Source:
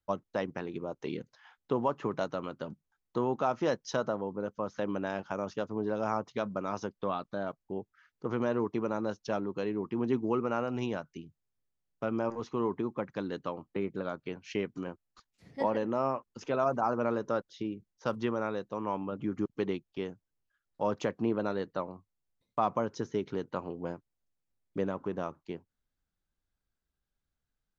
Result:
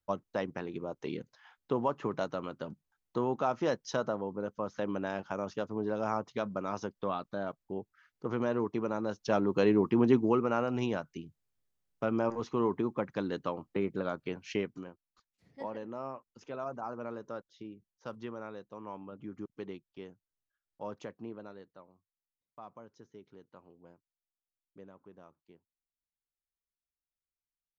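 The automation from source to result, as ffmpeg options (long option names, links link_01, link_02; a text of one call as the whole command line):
ffmpeg -i in.wav -af "volume=8.5dB,afade=type=in:start_time=9.09:duration=0.62:silence=0.334965,afade=type=out:start_time=9.71:duration=0.71:silence=0.446684,afade=type=out:start_time=14.5:duration=0.41:silence=0.266073,afade=type=out:start_time=20.83:duration=0.95:silence=0.316228" out.wav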